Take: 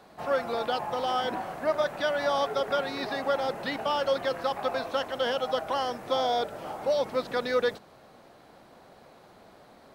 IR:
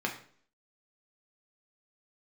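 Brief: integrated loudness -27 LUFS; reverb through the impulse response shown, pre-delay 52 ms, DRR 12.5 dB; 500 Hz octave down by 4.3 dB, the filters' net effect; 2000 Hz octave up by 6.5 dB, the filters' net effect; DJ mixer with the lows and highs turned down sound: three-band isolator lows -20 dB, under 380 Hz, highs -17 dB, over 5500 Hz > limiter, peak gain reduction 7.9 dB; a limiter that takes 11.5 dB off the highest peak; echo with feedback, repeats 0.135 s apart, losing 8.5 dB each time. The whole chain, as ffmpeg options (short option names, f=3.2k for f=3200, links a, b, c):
-filter_complex "[0:a]equalizer=f=500:t=o:g=-3.5,equalizer=f=2k:t=o:g=9,alimiter=level_in=2dB:limit=-24dB:level=0:latency=1,volume=-2dB,aecho=1:1:135|270|405|540:0.376|0.143|0.0543|0.0206,asplit=2[a][b];[1:a]atrim=start_sample=2205,adelay=52[c];[b][c]afir=irnorm=-1:irlink=0,volume=-19dB[d];[a][d]amix=inputs=2:normalize=0,acrossover=split=380 5500:gain=0.1 1 0.141[e][f][g];[e][f][g]amix=inputs=3:normalize=0,volume=12.5dB,alimiter=limit=-19dB:level=0:latency=1"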